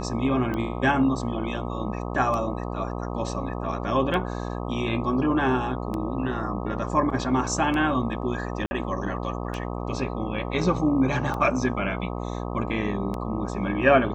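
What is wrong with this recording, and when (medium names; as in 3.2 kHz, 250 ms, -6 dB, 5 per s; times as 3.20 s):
buzz 60 Hz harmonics 21 -31 dBFS
tick 33 1/3 rpm -18 dBFS
8.66–8.71 s: dropout 50 ms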